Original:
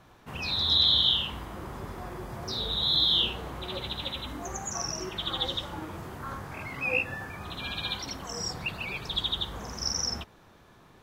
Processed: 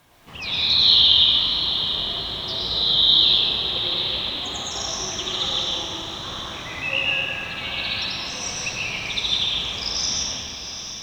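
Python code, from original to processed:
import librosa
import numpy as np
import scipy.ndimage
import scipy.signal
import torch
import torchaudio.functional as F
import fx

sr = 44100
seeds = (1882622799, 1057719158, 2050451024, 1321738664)

p1 = scipy.signal.sosfilt(scipy.signal.butter(2, 5100.0, 'lowpass', fs=sr, output='sos'), x)
p2 = fx.high_shelf(p1, sr, hz=2000.0, db=10.5)
p3 = fx.notch(p2, sr, hz=1400.0, q=7.6)
p4 = fx.quant_dither(p3, sr, seeds[0], bits=8, dither='triangular')
p5 = p3 + (p4 * 10.0 ** (-11.0 / 20.0))
p6 = fx.wow_flutter(p5, sr, seeds[1], rate_hz=2.1, depth_cents=110.0)
p7 = p6 + fx.echo_diffused(p6, sr, ms=744, feedback_pct=47, wet_db=-9.0, dry=0)
p8 = fx.rev_freeverb(p7, sr, rt60_s=1.9, hf_ratio=0.85, predelay_ms=70, drr_db=-4.0)
y = p8 * 10.0 ** (-5.5 / 20.0)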